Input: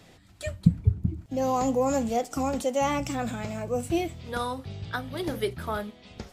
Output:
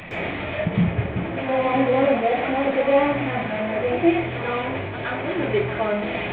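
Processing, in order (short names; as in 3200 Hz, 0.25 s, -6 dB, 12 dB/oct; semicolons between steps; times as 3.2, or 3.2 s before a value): delta modulation 16 kbps, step -25.5 dBFS; bell 590 Hz +8.5 dB 0.85 oct; reverb RT60 0.45 s, pre-delay 0.11 s, DRR -10.5 dB; gain -4.5 dB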